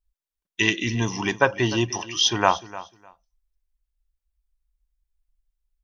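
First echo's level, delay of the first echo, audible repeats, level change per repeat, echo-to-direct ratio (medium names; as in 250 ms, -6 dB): -17.0 dB, 302 ms, 2, -15.0 dB, -17.0 dB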